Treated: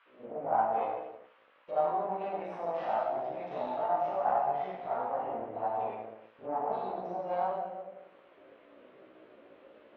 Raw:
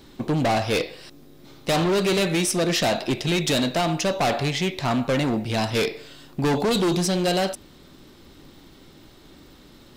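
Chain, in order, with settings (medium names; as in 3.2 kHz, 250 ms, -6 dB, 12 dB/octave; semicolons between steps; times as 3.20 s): spectral gate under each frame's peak -15 dB strong; gate with hold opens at -42 dBFS; bass shelf 100 Hz -11 dB; Schroeder reverb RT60 1.3 s, combs from 28 ms, DRR -9.5 dB; dynamic bell 340 Hz, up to -7 dB, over -39 dBFS, Q 0.75; half-wave rectifier; band noise 1–3.3 kHz -45 dBFS; auto-wah 530–1400 Hz, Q 3.5, up, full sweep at -8 dBFS; chorus 0.88 Hz, delay 15.5 ms, depth 2.8 ms; low-pass that closes with the level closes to 2.1 kHz, closed at -42.5 dBFS; trim +2 dB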